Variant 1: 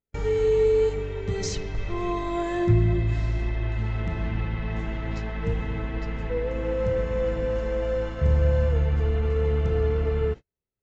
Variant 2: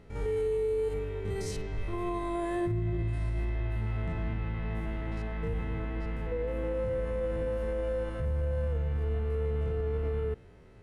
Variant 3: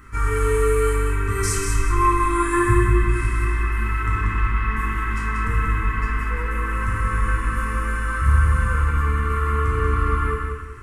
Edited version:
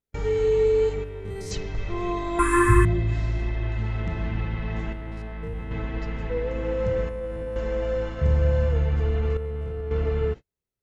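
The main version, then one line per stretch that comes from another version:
1
1.04–1.51 from 2
2.39–2.85 from 3
4.93–5.71 from 2
7.09–7.56 from 2
9.37–9.91 from 2

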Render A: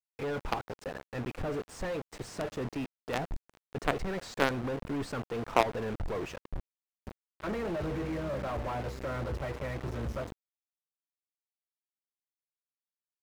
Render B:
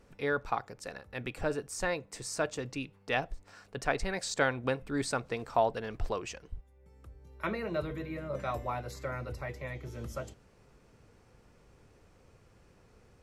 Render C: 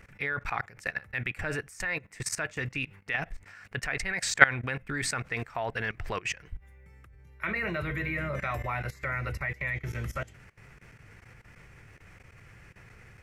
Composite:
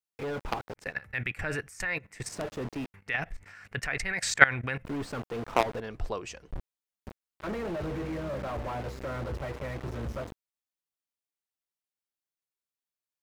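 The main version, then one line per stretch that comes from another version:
A
0.87–2.27 from C, crossfade 0.24 s
2.94–4.85 from C
5.8–6.51 from B

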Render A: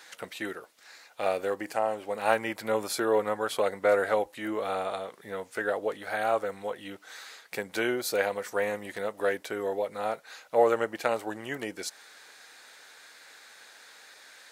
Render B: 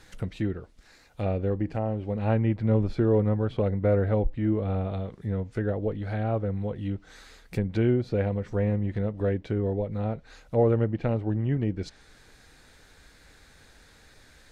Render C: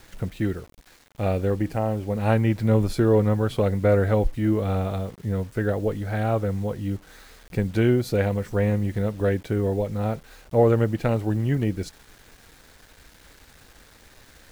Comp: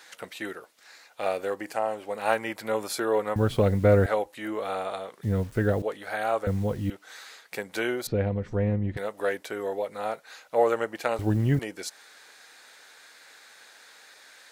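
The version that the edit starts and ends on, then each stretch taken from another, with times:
A
3.36–4.06 from C
5.23–5.82 from C
6.47–6.9 from C
8.07–8.97 from B
11.19–11.59 from C

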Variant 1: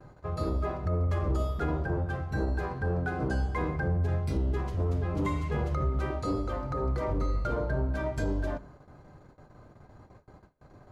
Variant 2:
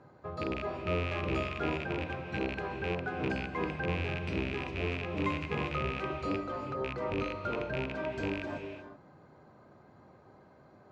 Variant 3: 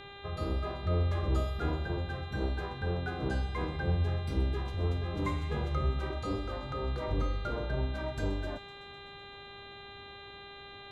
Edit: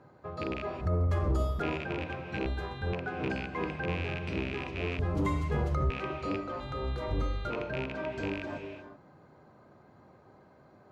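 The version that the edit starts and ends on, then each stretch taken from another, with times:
2
0.81–1.62 from 1
2.46–2.93 from 3
4.99–5.9 from 1
6.6–7.5 from 3

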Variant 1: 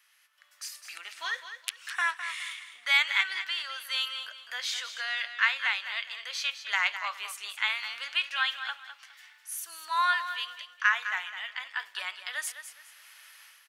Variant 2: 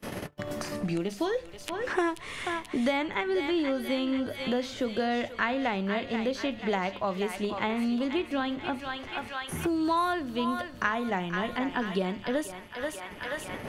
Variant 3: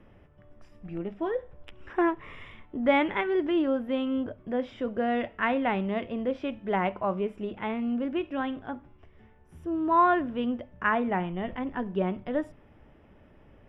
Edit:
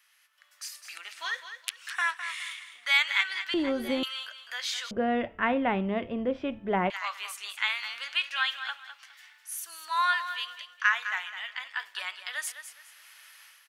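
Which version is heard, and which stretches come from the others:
1
3.54–4.03 from 2
4.91–6.9 from 3

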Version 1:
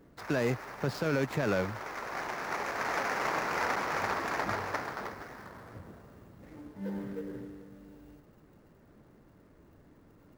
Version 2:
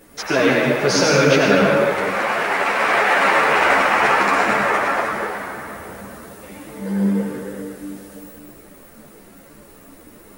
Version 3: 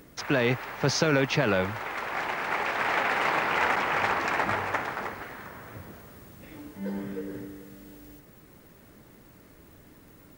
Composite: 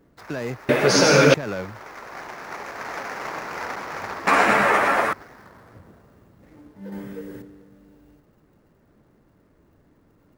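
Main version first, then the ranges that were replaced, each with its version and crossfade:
1
0.69–1.34 from 2
4.27–5.13 from 2
6.92–7.42 from 3

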